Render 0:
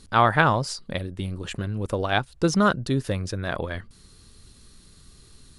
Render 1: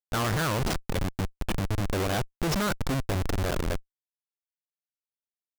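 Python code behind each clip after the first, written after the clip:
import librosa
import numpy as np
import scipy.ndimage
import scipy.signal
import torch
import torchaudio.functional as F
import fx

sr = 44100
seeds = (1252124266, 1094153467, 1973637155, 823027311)

y = fx.schmitt(x, sr, flips_db=-27.0)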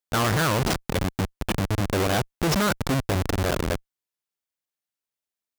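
y = fx.highpass(x, sr, hz=66.0, slope=6)
y = F.gain(torch.from_numpy(y), 5.0).numpy()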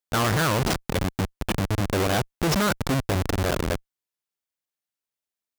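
y = x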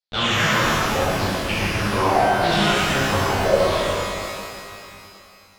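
y = fx.filter_lfo_lowpass(x, sr, shape='saw_down', hz=0.84, low_hz=510.0, high_hz=4700.0, q=5.0)
y = fx.dereverb_blind(y, sr, rt60_s=1.9)
y = fx.rev_shimmer(y, sr, seeds[0], rt60_s=2.7, semitones=12, shimmer_db=-8, drr_db=-10.0)
y = F.gain(torch.from_numpy(y), -7.5).numpy()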